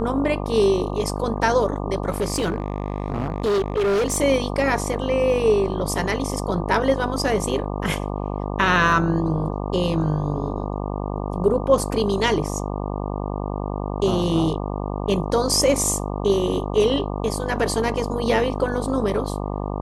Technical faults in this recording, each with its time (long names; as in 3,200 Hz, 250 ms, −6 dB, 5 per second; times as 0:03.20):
mains buzz 50 Hz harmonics 24 −27 dBFS
0:02.09–0:04.18: clipping −17.5 dBFS